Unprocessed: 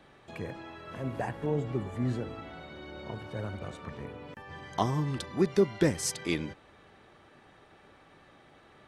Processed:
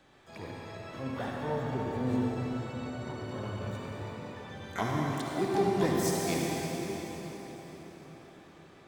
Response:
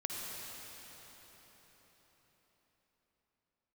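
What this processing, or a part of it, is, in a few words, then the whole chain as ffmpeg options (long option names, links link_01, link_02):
shimmer-style reverb: -filter_complex "[0:a]asplit=2[link_01][link_02];[link_02]asetrate=88200,aresample=44100,atempo=0.5,volume=-6dB[link_03];[link_01][link_03]amix=inputs=2:normalize=0[link_04];[1:a]atrim=start_sample=2205[link_05];[link_04][link_05]afir=irnorm=-1:irlink=0,asettb=1/sr,asplit=3[link_06][link_07][link_08];[link_06]atrim=end=5.134[link_09];[link_07]atrim=start=5.13:end=5.54,asetpts=PTS-STARTPTS,afade=type=in:duration=0.004:curve=qsin,afade=type=out:start_time=0.406:duration=0.004:curve=qsin,equalizer=frequency=92:width=0.81:gain=-9[link_10];[link_08]atrim=start=5.536[link_11];[link_09][link_10]acrossfade=duration=0.004:curve1=hsin:curve2=qsin[link_12];[link_12][link_11]acrossfade=duration=0.004:curve1=qsin:curve2=hsin,volume=-3.5dB"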